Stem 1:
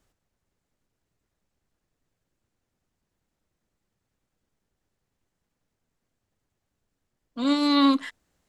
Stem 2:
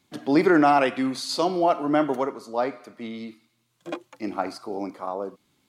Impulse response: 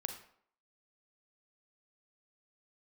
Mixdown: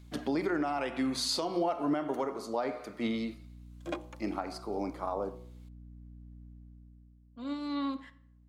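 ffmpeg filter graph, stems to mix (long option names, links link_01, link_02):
-filter_complex "[0:a]highshelf=frequency=3700:gain=-11.5,aeval=exprs='val(0)+0.00562*(sin(2*PI*60*n/s)+sin(2*PI*2*60*n/s)/2+sin(2*PI*3*60*n/s)/3+sin(2*PI*4*60*n/s)/4+sin(2*PI*5*60*n/s)/5)':channel_layout=same,volume=1.5dB,afade=type=out:start_time=1.14:duration=0.44:silence=0.354813,afade=type=in:start_time=3.03:duration=0.43:silence=0.266073,afade=type=out:start_time=6.43:duration=0.76:silence=0.298538,asplit=3[link_01][link_02][link_03];[link_02]volume=-3dB[link_04];[1:a]bandreject=frequency=61.62:width_type=h:width=4,bandreject=frequency=123.24:width_type=h:width=4,bandreject=frequency=184.86:width_type=h:width=4,bandreject=frequency=246.48:width_type=h:width=4,bandreject=frequency=308.1:width_type=h:width=4,bandreject=frequency=369.72:width_type=h:width=4,bandreject=frequency=431.34:width_type=h:width=4,bandreject=frequency=492.96:width_type=h:width=4,bandreject=frequency=554.58:width_type=h:width=4,bandreject=frequency=616.2:width_type=h:width=4,bandreject=frequency=677.82:width_type=h:width=4,bandreject=frequency=739.44:width_type=h:width=4,bandreject=frequency=801.06:width_type=h:width=4,bandreject=frequency=862.68:width_type=h:width=4,bandreject=frequency=924.3:width_type=h:width=4,bandreject=frequency=985.92:width_type=h:width=4,bandreject=frequency=1047.54:width_type=h:width=4,bandreject=frequency=1109.16:width_type=h:width=4,bandreject=frequency=1170.78:width_type=h:width=4,acompressor=threshold=-25dB:ratio=6,volume=2.5dB,asplit=2[link_05][link_06];[link_06]volume=-20.5dB[link_07];[link_03]apad=whole_len=250697[link_08];[link_05][link_08]sidechaincompress=threshold=-57dB:ratio=8:attack=6.2:release=106[link_09];[2:a]atrim=start_sample=2205[link_10];[link_04][link_07]amix=inputs=2:normalize=0[link_11];[link_11][link_10]afir=irnorm=-1:irlink=0[link_12];[link_01][link_09][link_12]amix=inputs=3:normalize=0,alimiter=limit=-21dB:level=0:latency=1:release=461"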